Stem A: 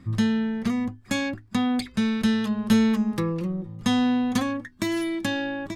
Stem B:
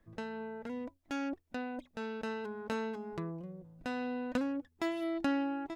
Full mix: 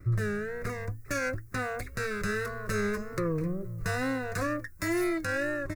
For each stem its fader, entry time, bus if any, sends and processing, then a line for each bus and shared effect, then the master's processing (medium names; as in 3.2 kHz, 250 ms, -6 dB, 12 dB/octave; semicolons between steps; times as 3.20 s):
+1.5 dB, 0.00 s, no send, median filter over 9 samples; wow and flutter 130 cents; bass shelf 110 Hz +9.5 dB
-1.0 dB, 1.2 ms, no send, high-pass 1.2 kHz; tilt EQ +4 dB/octave; level rider gain up to 11.5 dB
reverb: none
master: static phaser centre 860 Hz, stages 6; peak limiter -20.5 dBFS, peak gain reduction 8.5 dB